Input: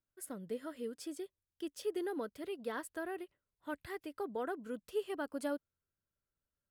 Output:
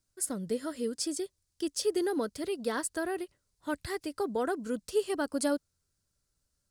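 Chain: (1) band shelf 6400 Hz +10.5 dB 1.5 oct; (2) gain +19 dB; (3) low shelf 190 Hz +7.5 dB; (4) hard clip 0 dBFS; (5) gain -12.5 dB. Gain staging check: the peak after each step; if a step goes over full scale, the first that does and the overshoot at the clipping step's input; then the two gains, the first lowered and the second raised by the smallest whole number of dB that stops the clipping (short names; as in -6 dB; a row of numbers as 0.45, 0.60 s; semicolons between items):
-24.0, -5.0, -3.5, -3.5, -16.0 dBFS; no overload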